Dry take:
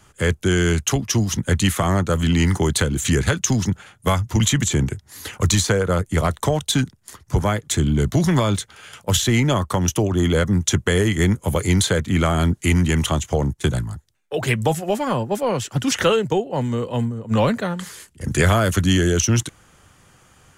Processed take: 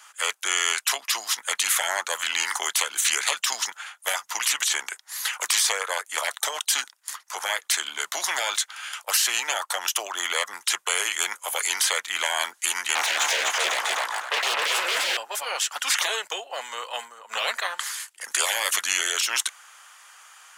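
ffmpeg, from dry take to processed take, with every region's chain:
-filter_complex "[0:a]asettb=1/sr,asplit=3[a][b][c];[a]atrim=end=12.954[d];[b]atrim=start=12.95:end=15.17,asetpts=PTS-STARTPTS,afade=t=in:d=0.004:c=qsin,afade=t=out:st=2.216:d=0.004:c=qsin,deesser=1,asplit=2[e][f];[f]highpass=f=720:p=1,volume=33dB,asoftclip=type=tanh:threshold=-8.5dB[g];[e][g]amix=inputs=2:normalize=0,lowpass=f=1.7k:p=1,volume=-6dB,aecho=1:1:252|504|756:0.708|0.163|0.0375,atrim=end_sample=97902[h];[c]atrim=start=15.166[i];[d][h]acrossfade=d=0.004:c1=hsin:c2=qsin[j];[j][i]acrossfade=d=0.004:c1=qsin:c2=hsin,highpass=f=910:w=0.5412,highpass=f=910:w=1.3066,afftfilt=real='re*lt(hypot(re,im),0.126)':imag='im*lt(hypot(re,im),0.126)':win_size=1024:overlap=0.75,volume=6.5dB"

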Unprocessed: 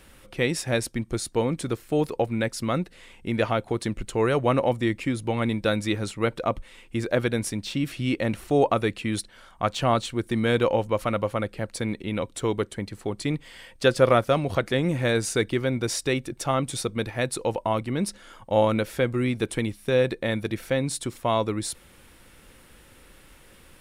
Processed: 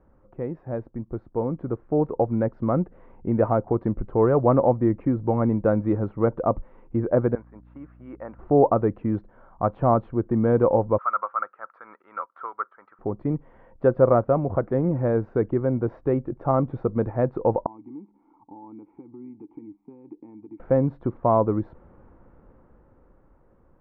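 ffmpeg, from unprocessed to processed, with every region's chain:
-filter_complex "[0:a]asettb=1/sr,asplit=3[a][b][c];[a]atrim=end=7.354[d];[b]atrim=start=7.35:end=8.39,asetpts=PTS-STARTPTS,afade=t=in:d=0.004:c=qsin,afade=t=out:st=1.036:d=0.004:c=qsin,agate=range=-6dB:threshold=-30dB:ratio=16:release=100:detection=peak,bandpass=f=1.4k:t=q:w=1.6,aeval=exprs='val(0)+0.00224*(sin(2*PI*60*n/s)+sin(2*PI*2*60*n/s)/2+sin(2*PI*3*60*n/s)/3+sin(2*PI*4*60*n/s)/4+sin(2*PI*5*60*n/s)/5)':c=same[e];[c]atrim=start=8.386[f];[d][e]acrossfade=d=0.004:c1=hsin:c2=qsin[g];[g][f]acrossfade=d=0.004:c1=qsin:c2=hsin,asettb=1/sr,asplit=3[h][i][j];[h]atrim=end=10.984[k];[i]atrim=start=10.98:end=12.99,asetpts=PTS-STARTPTS,afade=t=in:d=0.004:c=qsin,afade=t=out:st=2.006:d=0.004:c=qsin,highpass=f=1.3k:t=q:w=8.3,tremolo=f=4.2:d=0.51[l];[j]atrim=start=12.986[m];[k][l]acrossfade=d=0.004:c1=hsin:c2=qsin[n];[n][m]acrossfade=d=0.004:c1=qsin:c2=hsin,asettb=1/sr,asplit=3[o][p][q];[o]atrim=end=17.664[r];[p]atrim=start=17.66:end=20.6,asetpts=PTS-STARTPTS,afade=t=in:d=0.004:c=qsin,afade=t=out:st=2.936:d=0.004:c=qsin,acompressor=threshold=-31dB:ratio=8:attack=3.2:release=140:knee=1:detection=peak,asplit=3[s][t][u];[s]bandpass=f=300:t=q:w=8,volume=0dB[v];[t]bandpass=f=870:t=q:w=8,volume=-6dB[w];[u]bandpass=f=2.24k:t=q:w=8,volume=-9dB[x];[v][w][x]amix=inputs=3:normalize=0[y];[q]atrim=start=20.596[z];[r][y]acrossfade=d=0.004:c1=hsin:c2=qsin[aa];[aa][z]acrossfade=d=0.004:c1=qsin:c2=hsin,lowpass=f=1.1k:w=0.5412,lowpass=f=1.1k:w=1.3066,dynaudnorm=f=220:g=17:m=11.5dB,volume=-5dB"

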